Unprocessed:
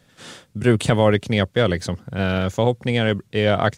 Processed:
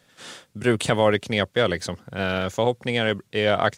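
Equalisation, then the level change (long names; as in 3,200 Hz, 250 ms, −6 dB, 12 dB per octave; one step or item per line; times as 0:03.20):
low-shelf EQ 250 Hz −10 dB
0.0 dB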